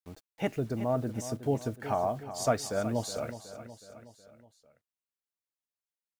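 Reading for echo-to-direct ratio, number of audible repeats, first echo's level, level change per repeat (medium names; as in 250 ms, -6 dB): -11.0 dB, 4, -12.5 dB, -5.5 dB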